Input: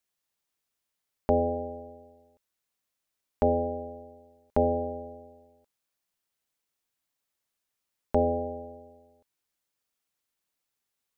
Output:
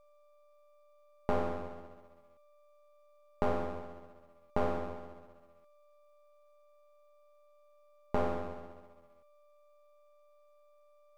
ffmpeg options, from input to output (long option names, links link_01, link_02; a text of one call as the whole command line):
ffmpeg -i in.wav -af "aeval=exprs='val(0)+0.002*sin(2*PI*590*n/s)':channel_layout=same,aeval=exprs='max(val(0),0)':channel_layout=same,volume=-3dB" out.wav